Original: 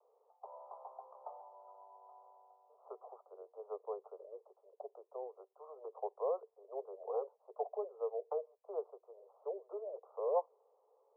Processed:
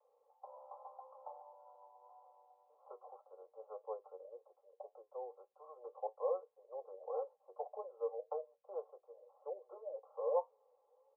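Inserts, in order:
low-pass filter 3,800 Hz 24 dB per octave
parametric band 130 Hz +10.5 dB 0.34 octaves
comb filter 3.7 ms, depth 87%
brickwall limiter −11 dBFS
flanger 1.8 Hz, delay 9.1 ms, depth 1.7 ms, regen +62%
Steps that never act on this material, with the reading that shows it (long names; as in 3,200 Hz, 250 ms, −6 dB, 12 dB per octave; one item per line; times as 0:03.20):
low-pass filter 3,800 Hz: nothing at its input above 1,300 Hz
parametric band 130 Hz: nothing at its input below 340 Hz
brickwall limiter −11 dBFS: peak of its input −18.5 dBFS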